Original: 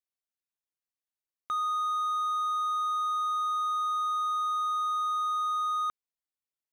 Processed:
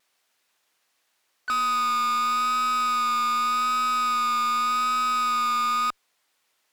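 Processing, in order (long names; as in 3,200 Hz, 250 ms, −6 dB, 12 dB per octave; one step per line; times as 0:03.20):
pitch-shifted copies added +3 semitones −17 dB
harmonic generator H 3 −44 dB, 6 −11 dB, 7 −42 dB, 8 −17 dB, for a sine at −23 dBFS
pitch vibrato 0.85 Hz 25 cents
mid-hump overdrive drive 32 dB, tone 3,700 Hz, clips at −23.5 dBFS
level +3.5 dB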